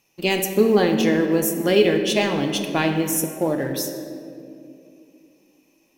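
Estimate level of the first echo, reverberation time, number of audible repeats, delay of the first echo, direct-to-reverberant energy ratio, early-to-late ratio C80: no echo audible, 2.6 s, no echo audible, no echo audible, 5.0 dB, 7.5 dB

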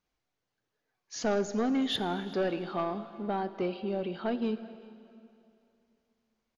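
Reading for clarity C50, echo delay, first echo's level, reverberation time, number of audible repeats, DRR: 12.5 dB, 374 ms, −22.0 dB, 2.7 s, 1, 11.5 dB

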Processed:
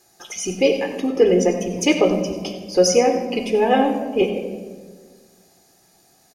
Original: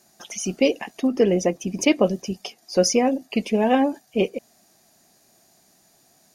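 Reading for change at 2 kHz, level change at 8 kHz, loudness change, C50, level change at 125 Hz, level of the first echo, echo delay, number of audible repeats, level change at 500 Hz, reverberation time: +2.5 dB, +2.5 dB, +3.0 dB, 6.5 dB, +1.0 dB, −14.0 dB, 96 ms, 1, +4.5 dB, 1.6 s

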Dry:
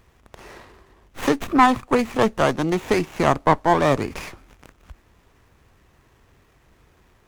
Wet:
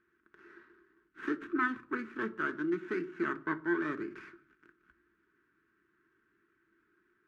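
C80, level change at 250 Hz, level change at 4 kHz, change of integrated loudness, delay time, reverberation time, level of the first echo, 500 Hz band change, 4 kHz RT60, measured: 21.5 dB, −12.5 dB, −24.5 dB, −15.0 dB, no echo audible, 0.45 s, no echo audible, −17.5 dB, 0.40 s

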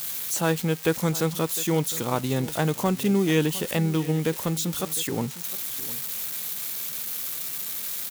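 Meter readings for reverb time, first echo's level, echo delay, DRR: no reverb audible, −17.0 dB, 707 ms, no reverb audible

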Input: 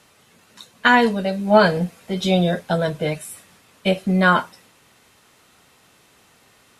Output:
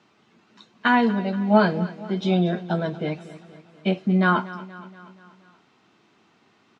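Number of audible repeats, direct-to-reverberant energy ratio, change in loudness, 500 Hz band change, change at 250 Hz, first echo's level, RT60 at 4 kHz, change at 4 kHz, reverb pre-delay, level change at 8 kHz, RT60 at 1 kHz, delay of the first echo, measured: 4, no reverb audible, −3.5 dB, −5.5 dB, −0.5 dB, −17.0 dB, no reverb audible, −8.0 dB, no reverb audible, below −15 dB, no reverb audible, 238 ms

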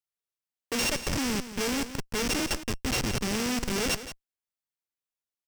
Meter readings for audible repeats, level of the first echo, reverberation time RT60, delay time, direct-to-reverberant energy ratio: 1, −12.5 dB, no reverb audible, 172 ms, no reverb audible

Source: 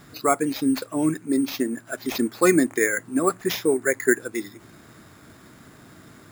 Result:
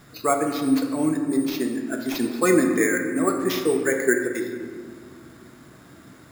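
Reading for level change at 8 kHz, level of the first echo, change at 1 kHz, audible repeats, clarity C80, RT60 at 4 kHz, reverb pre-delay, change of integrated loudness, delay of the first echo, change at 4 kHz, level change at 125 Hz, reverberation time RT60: −1.0 dB, no echo audible, 0.0 dB, no echo audible, 7.0 dB, 1.1 s, 5 ms, +0.5 dB, no echo audible, −1.0 dB, +0.5 dB, 2.0 s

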